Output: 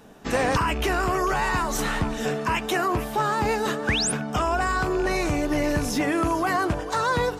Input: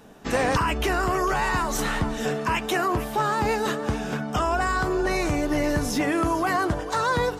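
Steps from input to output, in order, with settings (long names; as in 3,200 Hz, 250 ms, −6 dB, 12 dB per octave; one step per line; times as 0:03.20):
loose part that buzzes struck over −26 dBFS, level −29 dBFS
sound drawn into the spectrogram rise, 0:03.87–0:04.12, 1,400–11,000 Hz −25 dBFS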